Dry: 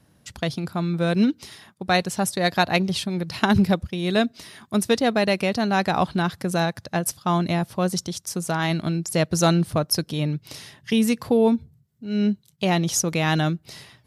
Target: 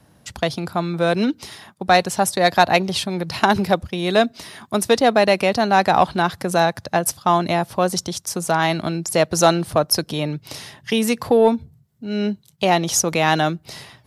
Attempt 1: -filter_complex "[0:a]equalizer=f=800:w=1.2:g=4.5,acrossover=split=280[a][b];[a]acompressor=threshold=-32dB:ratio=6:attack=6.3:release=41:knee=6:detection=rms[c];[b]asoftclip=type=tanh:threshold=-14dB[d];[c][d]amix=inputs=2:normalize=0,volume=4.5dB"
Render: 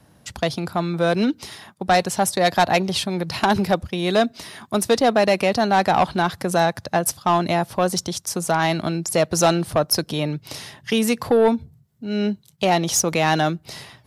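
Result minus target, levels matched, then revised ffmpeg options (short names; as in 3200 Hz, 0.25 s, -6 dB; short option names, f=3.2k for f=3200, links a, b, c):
soft clip: distortion +11 dB
-filter_complex "[0:a]equalizer=f=800:w=1.2:g=4.5,acrossover=split=280[a][b];[a]acompressor=threshold=-32dB:ratio=6:attack=6.3:release=41:knee=6:detection=rms[c];[b]asoftclip=type=tanh:threshold=-5.5dB[d];[c][d]amix=inputs=2:normalize=0,volume=4.5dB"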